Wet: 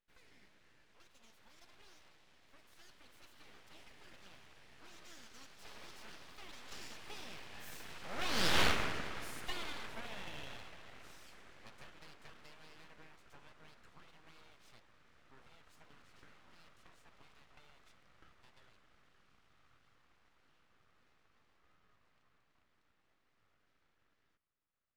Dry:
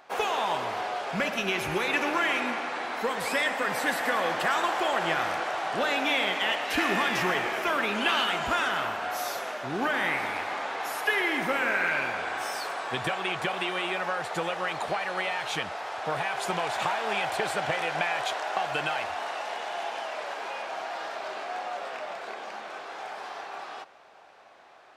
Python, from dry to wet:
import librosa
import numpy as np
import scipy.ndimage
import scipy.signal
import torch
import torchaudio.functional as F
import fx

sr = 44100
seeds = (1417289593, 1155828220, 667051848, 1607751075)

y = fx.doppler_pass(x, sr, speed_mps=57, closest_m=5.3, pass_at_s=8.62)
y = np.abs(y)
y = F.gain(torch.from_numpy(y), 6.0).numpy()